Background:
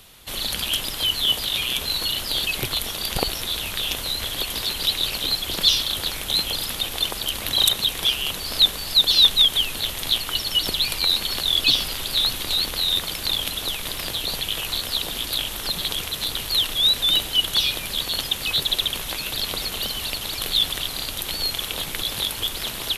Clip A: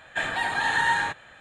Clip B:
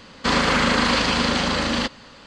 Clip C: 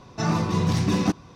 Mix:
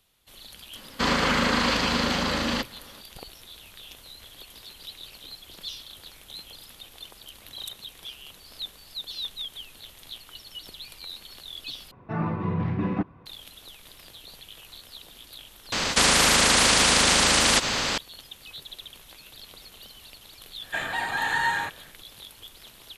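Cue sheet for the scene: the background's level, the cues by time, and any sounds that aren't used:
background −19.5 dB
0:00.75: mix in B −4 dB
0:11.91: overwrite with C −4.5 dB + low-pass filter 2,300 Hz 24 dB per octave
0:15.72: mix in B −0.5 dB + every bin compressed towards the loudest bin 4 to 1
0:20.57: mix in A −2 dB, fades 0.10 s

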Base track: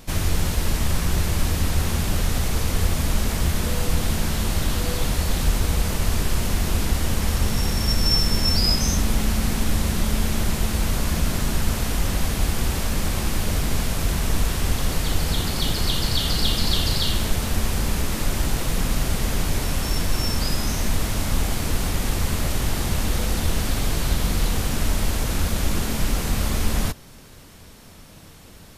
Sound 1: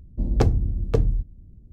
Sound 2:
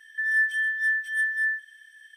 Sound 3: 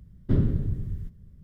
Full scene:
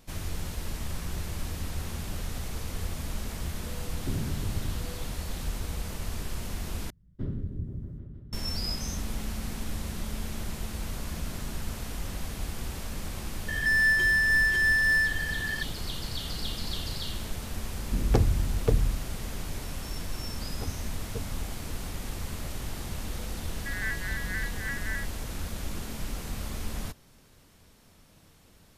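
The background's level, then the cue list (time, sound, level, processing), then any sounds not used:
base track −12.5 dB
0:03.78: mix in 3 −0.5 dB + downward compressor, threshold −28 dBFS
0:06.90: overwrite with 3 −11.5 dB + echo whose low-pass opens from repeat to repeat 157 ms, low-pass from 200 Hz, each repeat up 1 octave, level −3 dB
0:13.48: mix in 2 −1 dB + mid-hump overdrive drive 28 dB, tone 2,300 Hz, clips at −16 dBFS
0:17.74: mix in 1 −3.5 dB
0:20.21: mix in 1 −15 dB + string-ensemble chorus
0:23.47: mix in 2 −9 dB + vocoder with an arpeggio as carrier minor triad, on F#3, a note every 87 ms

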